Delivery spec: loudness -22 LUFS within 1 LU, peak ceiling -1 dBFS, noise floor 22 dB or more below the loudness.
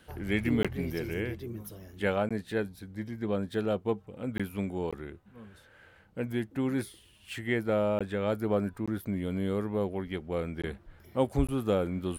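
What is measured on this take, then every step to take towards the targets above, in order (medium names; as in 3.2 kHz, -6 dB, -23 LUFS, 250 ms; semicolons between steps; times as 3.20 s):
dropouts 8; longest dropout 16 ms; loudness -32.0 LUFS; peak level -14.0 dBFS; loudness target -22.0 LUFS
-> interpolate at 0.63/2.29/4.38/4.91/7.99/8.86/10.62/11.47 s, 16 ms; trim +10 dB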